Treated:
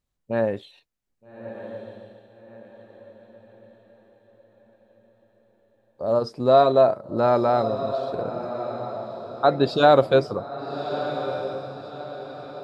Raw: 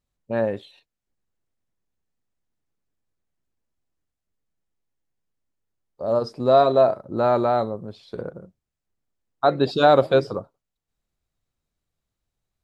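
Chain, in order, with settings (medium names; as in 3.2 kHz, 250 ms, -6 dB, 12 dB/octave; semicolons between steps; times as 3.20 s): echo that smears into a reverb 1245 ms, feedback 42%, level -10 dB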